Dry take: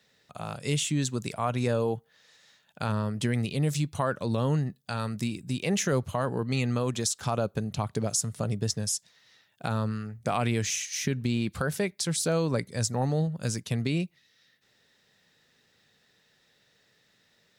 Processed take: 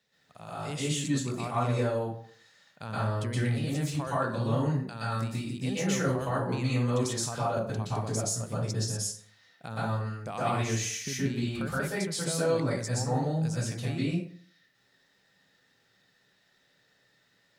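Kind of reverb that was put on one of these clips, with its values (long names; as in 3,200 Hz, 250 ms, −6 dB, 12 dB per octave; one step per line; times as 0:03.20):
dense smooth reverb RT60 0.54 s, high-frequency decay 0.6×, pre-delay 110 ms, DRR −9 dB
level −10 dB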